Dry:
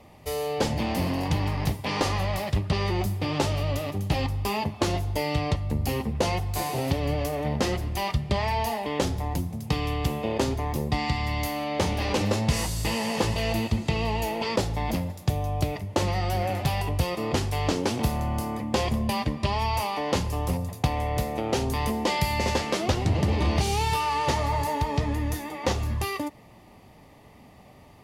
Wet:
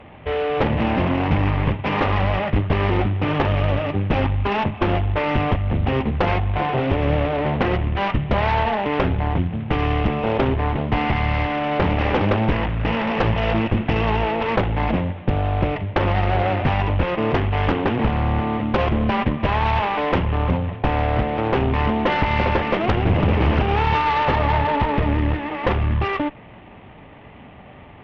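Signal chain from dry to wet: CVSD coder 16 kbps; Chebyshev shaper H 4 -6 dB, 5 -9 dB, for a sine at -11 dBFS

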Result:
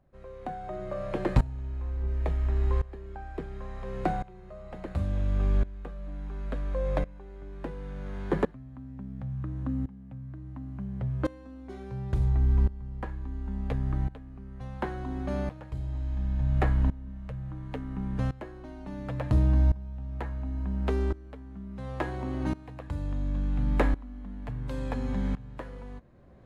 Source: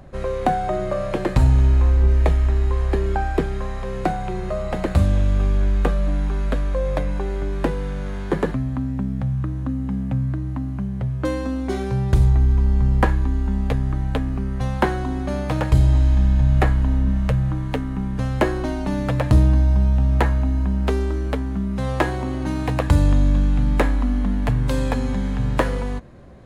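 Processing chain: treble shelf 4.3 kHz -9 dB; sawtooth tremolo in dB swelling 0.71 Hz, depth 20 dB; trim -4 dB

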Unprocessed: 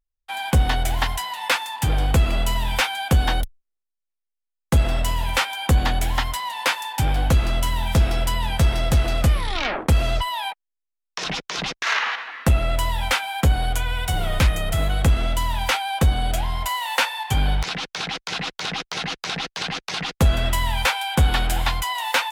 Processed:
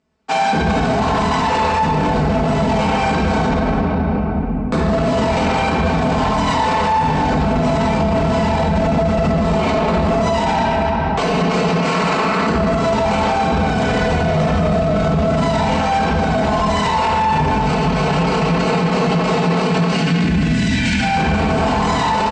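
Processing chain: median filter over 25 samples; high-pass 89 Hz 24 dB/octave; time-frequency box 19.66–21.01 s, 340–1400 Hz -22 dB; Chebyshev low-pass 8.1 kHz, order 5; comb 4.6 ms, depth 90%; compression, threshold -31 dBFS, peak gain reduction 17 dB; delay 305 ms -17.5 dB; simulated room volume 130 m³, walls hard, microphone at 1.8 m; loudness maximiser +25 dB; trim -8 dB

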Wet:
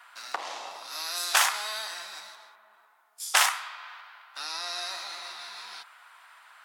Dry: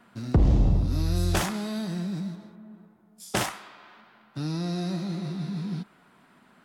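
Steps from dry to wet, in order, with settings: high-pass 910 Hz 24 dB/octave; trim +8.5 dB

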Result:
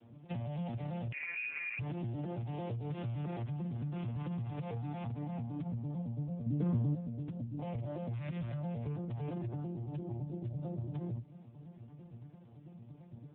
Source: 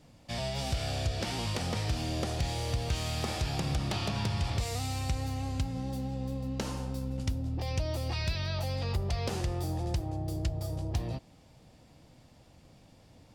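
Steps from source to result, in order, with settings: vocoder on a broken chord major triad, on A#2, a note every 112 ms; 1.12–1.79 s: frequency inversion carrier 2.6 kHz; peak limiter -32.5 dBFS, peak gain reduction 11 dB; 9.66–10.08 s: dynamic bell 980 Hz, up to -3 dB, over -58 dBFS, Q 1.1; compression 12:1, threshold -43 dBFS, peak gain reduction 8.5 dB; 6.46–6.95 s: bass shelf 500 Hz +8 dB; trim +8.5 dB; AMR-NB 7.95 kbps 8 kHz

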